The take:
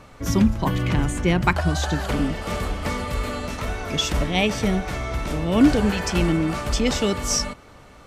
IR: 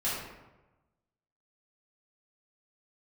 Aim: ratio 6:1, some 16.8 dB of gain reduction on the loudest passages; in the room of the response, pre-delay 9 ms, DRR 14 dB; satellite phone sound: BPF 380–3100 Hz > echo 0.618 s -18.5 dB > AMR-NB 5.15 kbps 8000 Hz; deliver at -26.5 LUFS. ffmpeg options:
-filter_complex "[0:a]acompressor=threshold=-30dB:ratio=6,asplit=2[a][b];[1:a]atrim=start_sample=2205,adelay=9[c];[b][c]afir=irnorm=-1:irlink=0,volume=-21.5dB[d];[a][d]amix=inputs=2:normalize=0,highpass=380,lowpass=3.1k,aecho=1:1:618:0.119,volume=15dB" -ar 8000 -c:a libopencore_amrnb -b:a 5150

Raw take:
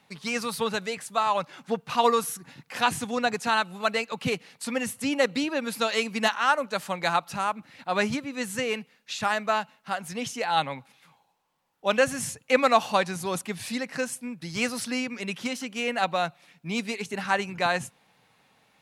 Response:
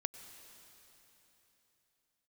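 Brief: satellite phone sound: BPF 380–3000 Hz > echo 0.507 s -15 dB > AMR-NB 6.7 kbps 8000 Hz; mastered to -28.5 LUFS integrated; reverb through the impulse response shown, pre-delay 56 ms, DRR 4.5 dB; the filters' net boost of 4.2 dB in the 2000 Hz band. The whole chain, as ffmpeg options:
-filter_complex "[0:a]equalizer=f=2k:t=o:g=6.5,asplit=2[a][b];[1:a]atrim=start_sample=2205,adelay=56[c];[b][c]afir=irnorm=-1:irlink=0,volume=-3.5dB[d];[a][d]amix=inputs=2:normalize=0,highpass=380,lowpass=3k,aecho=1:1:507:0.178,volume=-2dB" -ar 8000 -c:a libopencore_amrnb -b:a 6700

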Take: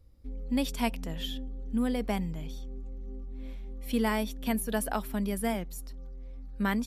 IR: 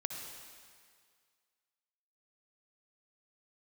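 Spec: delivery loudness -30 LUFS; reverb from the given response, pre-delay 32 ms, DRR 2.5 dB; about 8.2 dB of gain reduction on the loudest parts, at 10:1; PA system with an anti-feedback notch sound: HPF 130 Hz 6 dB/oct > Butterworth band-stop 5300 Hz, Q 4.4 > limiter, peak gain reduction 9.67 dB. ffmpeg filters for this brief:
-filter_complex "[0:a]acompressor=threshold=-32dB:ratio=10,asplit=2[a][b];[1:a]atrim=start_sample=2205,adelay=32[c];[b][c]afir=irnorm=-1:irlink=0,volume=-3.5dB[d];[a][d]amix=inputs=2:normalize=0,highpass=f=130:p=1,asuperstop=centerf=5300:order=8:qfactor=4.4,volume=12.5dB,alimiter=limit=-19.5dB:level=0:latency=1"

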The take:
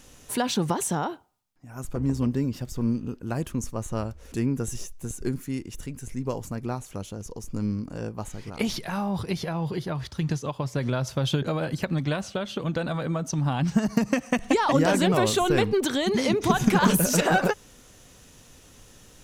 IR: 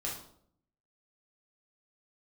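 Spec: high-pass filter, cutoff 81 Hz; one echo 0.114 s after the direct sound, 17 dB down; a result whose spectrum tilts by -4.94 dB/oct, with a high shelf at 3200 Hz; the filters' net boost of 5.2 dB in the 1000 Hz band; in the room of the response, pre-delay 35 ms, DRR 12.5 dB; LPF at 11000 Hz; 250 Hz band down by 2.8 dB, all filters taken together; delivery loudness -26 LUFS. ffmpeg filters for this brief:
-filter_complex "[0:a]highpass=81,lowpass=11k,equalizer=f=250:t=o:g=-4,equalizer=f=1k:t=o:g=7.5,highshelf=f=3.2k:g=-5.5,aecho=1:1:114:0.141,asplit=2[a][b];[1:a]atrim=start_sample=2205,adelay=35[c];[b][c]afir=irnorm=-1:irlink=0,volume=-15dB[d];[a][d]amix=inputs=2:normalize=0"

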